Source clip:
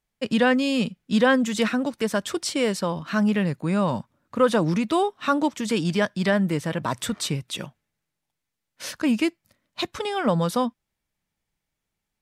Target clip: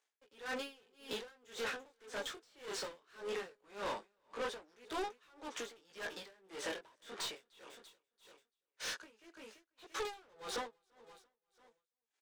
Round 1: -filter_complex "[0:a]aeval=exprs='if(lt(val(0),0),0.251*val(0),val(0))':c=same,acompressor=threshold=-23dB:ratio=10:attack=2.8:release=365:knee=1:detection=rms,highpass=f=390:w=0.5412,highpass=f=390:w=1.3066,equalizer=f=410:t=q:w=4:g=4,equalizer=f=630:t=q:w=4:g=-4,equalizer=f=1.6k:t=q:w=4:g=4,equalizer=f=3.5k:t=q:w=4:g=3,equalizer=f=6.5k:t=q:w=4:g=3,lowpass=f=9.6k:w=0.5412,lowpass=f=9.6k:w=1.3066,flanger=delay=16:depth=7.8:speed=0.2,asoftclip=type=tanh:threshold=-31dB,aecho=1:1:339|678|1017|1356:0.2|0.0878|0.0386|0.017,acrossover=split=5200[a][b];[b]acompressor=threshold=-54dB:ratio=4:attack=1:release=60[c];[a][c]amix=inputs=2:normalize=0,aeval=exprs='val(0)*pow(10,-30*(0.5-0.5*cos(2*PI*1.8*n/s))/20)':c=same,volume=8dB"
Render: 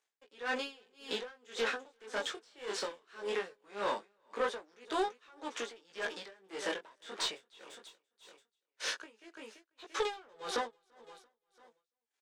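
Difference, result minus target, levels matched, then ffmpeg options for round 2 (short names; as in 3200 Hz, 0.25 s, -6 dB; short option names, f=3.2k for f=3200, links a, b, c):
soft clip: distortion -9 dB
-filter_complex "[0:a]aeval=exprs='if(lt(val(0),0),0.251*val(0),val(0))':c=same,acompressor=threshold=-23dB:ratio=10:attack=2.8:release=365:knee=1:detection=rms,highpass=f=390:w=0.5412,highpass=f=390:w=1.3066,equalizer=f=410:t=q:w=4:g=4,equalizer=f=630:t=q:w=4:g=-4,equalizer=f=1.6k:t=q:w=4:g=4,equalizer=f=3.5k:t=q:w=4:g=3,equalizer=f=6.5k:t=q:w=4:g=3,lowpass=f=9.6k:w=0.5412,lowpass=f=9.6k:w=1.3066,flanger=delay=16:depth=7.8:speed=0.2,asoftclip=type=tanh:threshold=-42.5dB,aecho=1:1:339|678|1017|1356:0.2|0.0878|0.0386|0.017,acrossover=split=5200[a][b];[b]acompressor=threshold=-54dB:ratio=4:attack=1:release=60[c];[a][c]amix=inputs=2:normalize=0,aeval=exprs='val(0)*pow(10,-30*(0.5-0.5*cos(2*PI*1.8*n/s))/20)':c=same,volume=8dB"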